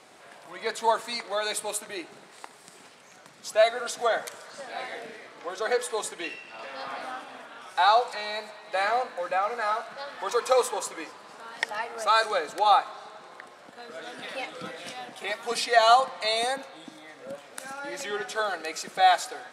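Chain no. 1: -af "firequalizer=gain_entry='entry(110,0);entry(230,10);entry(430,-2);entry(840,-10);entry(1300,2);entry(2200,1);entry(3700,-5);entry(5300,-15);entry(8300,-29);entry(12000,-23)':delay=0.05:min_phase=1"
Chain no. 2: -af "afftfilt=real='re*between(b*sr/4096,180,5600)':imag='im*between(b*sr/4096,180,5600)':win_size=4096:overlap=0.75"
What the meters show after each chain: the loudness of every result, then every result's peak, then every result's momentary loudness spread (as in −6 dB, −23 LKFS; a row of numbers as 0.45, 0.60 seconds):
−30.5, −27.0 LKFS; −7.5, −7.0 dBFS; 18, 21 LU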